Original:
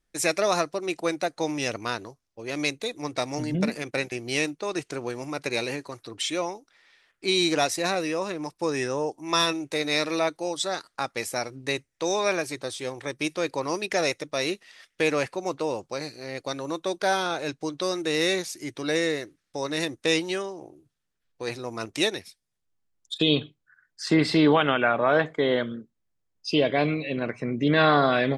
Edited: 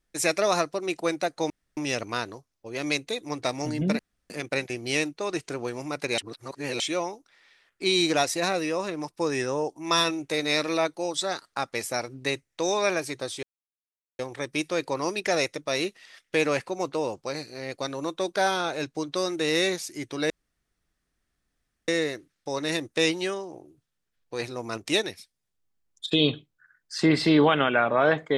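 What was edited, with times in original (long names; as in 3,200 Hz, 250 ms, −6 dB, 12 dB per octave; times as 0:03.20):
0:01.50: splice in room tone 0.27 s
0:03.72: splice in room tone 0.31 s
0:05.60–0:06.22: reverse
0:12.85: splice in silence 0.76 s
0:18.96: splice in room tone 1.58 s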